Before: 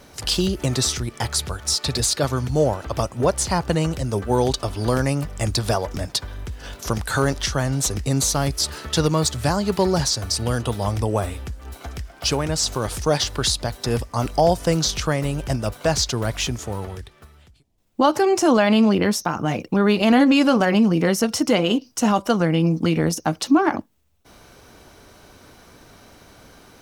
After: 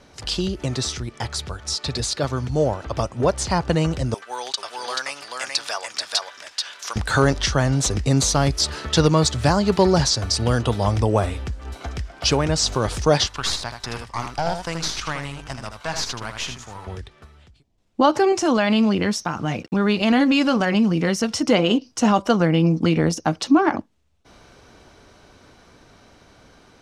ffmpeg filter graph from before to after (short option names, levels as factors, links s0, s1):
-filter_complex "[0:a]asettb=1/sr,asplit=3[s0][s1][s2];[s0]atrim=end=4.144[s3];[s1]atrim=start=4.14:end=6.96,asetpts=PTS-STARTPTS,afade=t=in:d=0.004:c=qsin,afade=t=out:st=2.816:d=0.004:c=qsin,highpass=1300,aecho=1:1:434:0.668,atrim=end_sample=124362[s4];[s2]atrim=start=6.956[s5];[s3][s4]acrossfade=d=0.004:c1=hsin:c2=qsin[s6];[s6][s5]acrossfade=d=0.004:c1=qsin:c2=hsin,asettb=1/sr,asplit=3[s7][s8][s9];[s7]atrim=end=13.264[s10];[s8]atrim=start=13.26:end=16.87,asetpts=PTS-STARTPTS,afade=t=in:d=0.004:c=qsin,afade=t=out:st=3.606:d=0.004:c=qsin,lowshelf=f=710:t=q:w=1.5:g=-9,aeval=exprs='(tanh(8.91*val(0)+0.75)-tanh(0.75))/8.91':c=same,aecho=1:1:79:0.447,atrim=end_sample=159201[s11];[s9]atrim=start=16.866[s12];[s10][s11]acrossfade=d=0.004:c1=hsin:c2=qsin[s13];[s13][s12]acrossfade=d=0.004:c1=qsin:c2=hsin,asettb=1/sr,asplit=3[s14][s15][s16];[s14]atrim=end=18.324[s17];[s15]atrim=start=18.32:end=21.43,asetpts=PTS-STARTPTS,afade=t=in:d=0.004:c=qsin,afade=t=out:st=3.106:d=0.004:c=qsin,equalizer=f=520:w=0.48:g=-4.5,acrusher=bits=7:mix=0:aa=0.5[s18];[s16]atrim=start=21.426[s19];[s17][s18]acrossfade=d=0.004:c1=hsin:c2=qsin[s20];[s20][s19]acrossfade=d=0.004:c1=qsin:c2=hsin,lowpass=6700,dynaudnorm=f=790:g=9:m=3.76,volume=0.708"